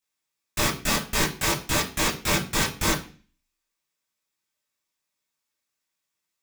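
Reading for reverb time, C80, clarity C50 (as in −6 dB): 0.40 s, 16.0 dB, 11.0 dB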